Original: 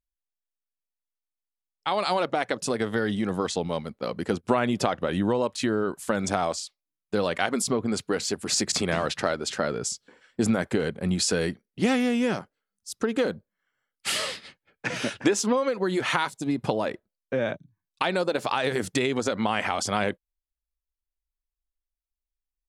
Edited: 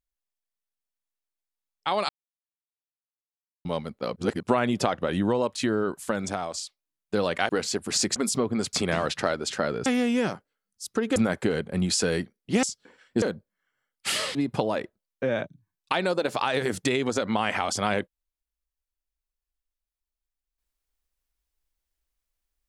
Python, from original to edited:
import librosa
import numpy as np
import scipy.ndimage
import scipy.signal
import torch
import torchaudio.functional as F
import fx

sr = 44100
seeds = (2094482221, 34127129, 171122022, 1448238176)

y = fx.edit(x, sr, fx.silence(start_s=2.09, length_s=1.56),
    fx.reverse_span(start_s=4.16, length_s=0.27),
    fx.fade_out_to(start_s=5.93, length_s=0.61, floor_db=-8.0),
    fx.move(start_s=7.49, length_s=0.57, to_s=8.73),
    fx.swap(start_s=9.86, length_s=0.59, other_s=11.92, other_length_s=1.3),
    fx.cut(start_s=14.35, length_s=2.1), tone=tone)